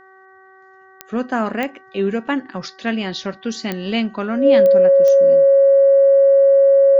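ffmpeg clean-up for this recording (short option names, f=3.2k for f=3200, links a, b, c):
-af "adeclick=t=4,bandreject=f=380.6:t=h:w=4,bandreject=f=761.2:t=h:w=4,bandreject=f=1.1418k:t=h:w=4,bandreject=f=1.5224k:t=h:w=4,bandreject=f=1.903k:t=h:w=4,bandreject=f=550:w=30"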